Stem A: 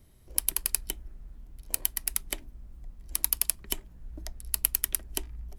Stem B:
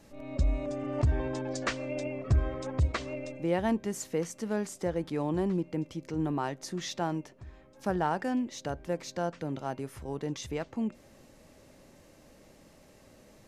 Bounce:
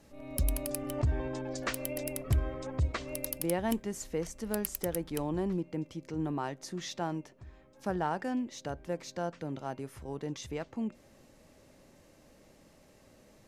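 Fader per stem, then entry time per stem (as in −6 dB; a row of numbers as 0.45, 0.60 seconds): −11.0, −3.0 decibels; 0.00, 0.00 seconds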